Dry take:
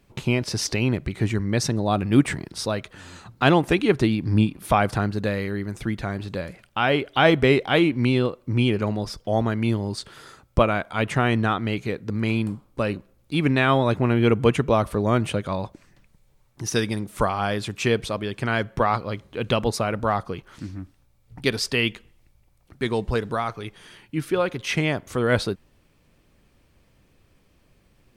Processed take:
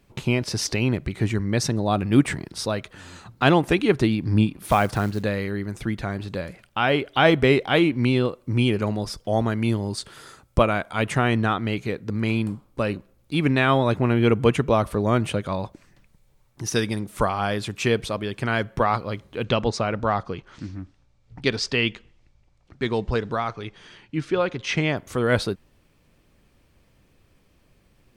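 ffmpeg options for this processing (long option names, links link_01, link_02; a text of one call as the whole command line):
ffmpeg -i in.wav -filter_complex "[0:a]asettb=1/sr,asplit=3[link_01][link_02][link_03];[link_01]atrim=end=4.644[link_04];[link_02]atrim=start=4.64:end=5.23,asetpts=PTS-STARTPTS,afade=type=in:duration=0.004:curve=qsin,afade=type=out:start_time=0.586:duration=0.004:curve=qsin,acrusher=bits=6:mode=log:mix=0:aa=0.000001[link_05];[link_03]atrim=start=5.226[link_06];[link_04][link_05]acrossfade=duration=0.004:curve1=hsin:curve2=qsin[link_07];[link_07][link_06]acrossfade=duration=0.004:curve1=qsin:curve2=hsin,asettb=1/sr,asplit=3[link_08][link_09][link_10];[link_08]atrim=end=8.274[link_11];[link_09]atrim=start=8.27:end=11.2,asetpts=PTS-STARTPTS,afade=type=in:duration=0.004:curve=qsin,afade=type=out:start_time=2.926:duration=0.004:curve=qsin,equalizer=frequency=9400:width_type=o:width=1.1:gain=4.5[link_12];[link_10]atrim=start=11.196[link_13];[link_11][link_12]acrossfade=duration=0.004:curve1=hsin:curve2=qsin[link_14];[link_14][link_13]acrossfade=duration=0.004:curve1=qsin:curve2=hsin,asettb=1/sr,asplit=3[link_15][link_16][link_17];[link_15]atrim=end=19.444[link_18];[link_16]atrim=start=19.44:end=24.97,asetpts=PTS-STARTPTS,afade=type=in:duration=0.004:curve=qsin,afade=type=out:start_time=5.526:duration=0.004:curve=qsin,lowpass=frequency=7000:width=0.5412,lowpass=frequency=7000:width=1.3066[link_19];[link_17]atrim=start=24.966[link_20];[link_18][link_19]acrossfade=duration=0.004:curve1=hsin:curve2=qsin[link_21];[link_21][link_20]acrossfade=duration=0.004:curve1=qsin:curve2=hsin" out.wav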